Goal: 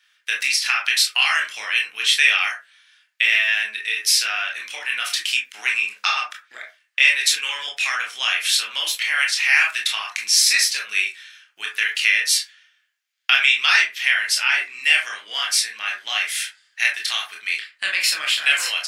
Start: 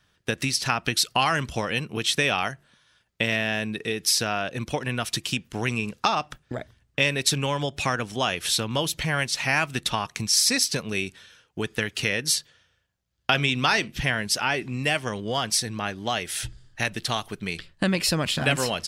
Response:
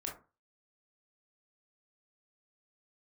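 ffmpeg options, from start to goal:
-filter_complex "[0:a]highpass=frequency=2100:width_type=q:width=1.9[link_01];[1:a]atrim=start_sample=2205,afade=type=out:start_time=0.2:duration=0.01,atrim=end_sample=9261[link_02];[link_01][link_02]afir=irnorm=-1:irlink=0,volume=6.5dB"

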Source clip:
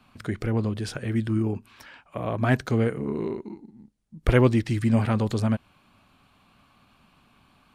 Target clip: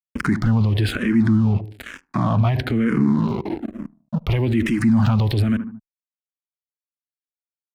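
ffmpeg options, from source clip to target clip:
ffmpeg -i in.wav -filter_complex "[0:a]equalizer=frequency=250:width_type=o:width=1:gain=5,equalizer=frequency=500:width_type=o:width=1:gain=-11,equalizer=frequency=8000:width_type=o:width=1:gain=-12,aeval=exprs='sgn(val(0))*max(abs(val(0))-0.00422,0)':channel_layout=same,asettb=1/sr,asplit=3[link_01][link_02][link_03];[link_01]atrim=end=0.814[link_04];[link_02]atrim=start=0.81:end=3.28,asetpts=PTS-STARTPTS,afade=type=in:duration=0.004:curve=qsin,afade=type=out:start_time=2.466:duration=0.004:curve=qsin,highshelf=frequency=7900:gain=-7[link_05];[link_03]atrim=start=3.276[link_06];[link_04][link_05]acrossfade=duration=0.004:curve1=hsin:curve2=qsin[link_07];[link_07][link_06]acrossfade=duration=0.004:curve1=qsin:curve2=hsin,asplit=2[link_08][link_09];[link_09]adelay=75,lowpass=frequency=1000:poles=1,volume=-23dB,asplit=2[link_10][link_11];[link_11]adelay=75,lowpass=frequency=1000:poles=1,volume=0.44,asplit=2[link_12][link_13];[link_13]adelay=75,lowpass=frequency=1000:poles=1,volume=0.44[link_14];[link_08][link_10][link_12][link_14]amix=inputs=4:normalize=0,alimiter=level_in=31.5dB:limit=-1dB:release=50:level=0:latency=1,asplit=2[link_15][link_16];[link_16]afreqshift=-1.1[link_17];[link_15][link_17]amix=inputs=2:normalize=1,volume=-7.5dB" out.wav

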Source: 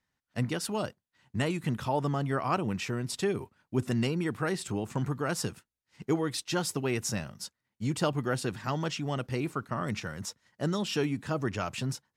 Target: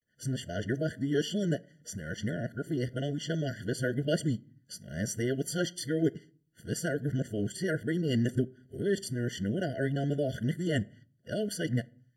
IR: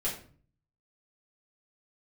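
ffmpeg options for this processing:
-filter_complex "[0:a]areverse,asplit=2[link_01][link_02];[link_02]adynamicequalizer=threshold=0.00282:dfrequency=920:dqfactor=7.1:tfrequency=920:tqfactor=7.1:attack=5:release=100:ratio=0.375:range=1.5:mode=boostabove:tftype=bell[link_03];[1:a]atrim=start_sample=2205,highshelf=frequency=3300:gain=2.5[link_04];[link_03][link_04]afir=irnorm=-1:irlink=0,volume=-23.5dB[link_05];[link_01][link_05]amix=inputs=2:normalize=0,afftfilt=real='re*eq(mod(floor(b*sr/1024/700),2),0)':imag='im*eq(mod(floor(b*sr/1024/700),2),0)':win_size=1024:overlap=0.75"

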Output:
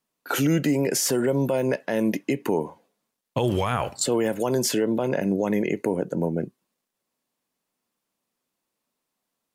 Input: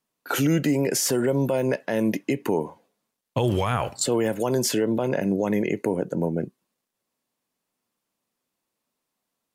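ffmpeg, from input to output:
ffmpeg -i in.wav -af "equalizer=frequency=110:width=5.4:gain=-5" out.wav

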